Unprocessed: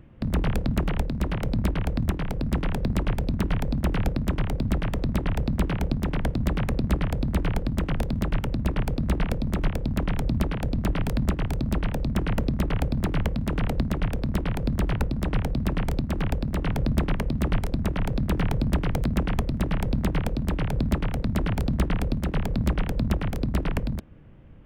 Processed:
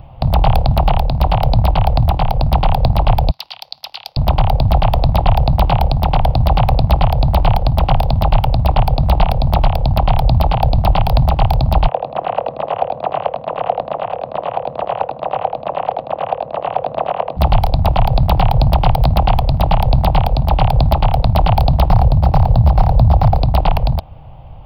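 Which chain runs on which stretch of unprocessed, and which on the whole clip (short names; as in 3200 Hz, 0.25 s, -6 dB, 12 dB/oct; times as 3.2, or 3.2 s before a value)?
3.31–4.17 band-pass 5100 Hz, Q 2.1 + tilt +2.5 dB/oct
11.88–17.37 speaker cabinet 490–2400 Hz, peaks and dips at 500 Hz +7 dB, 860 Hz -7 dB, 1400 Hz -4 dB, 2200 Hz -7 dB + echo 81 ms -6 dB
21.89–23.37 median filter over 15 samples + bell 97 Hz +6.5 dB 1.5 oct
whole clip: EQ curve 130 Hz 0 dB, 230 Hz -15 dB, 400 Hz -13 dB, 780 Hz +13 dB, 1700 Hz -14 dB, 2700 Hz -1 dB, 4700 Hz +3 dB, 7400 Hz -29 dB, 12000 Hz -1 dB; maximiser +15.5 dB; gain -1 dB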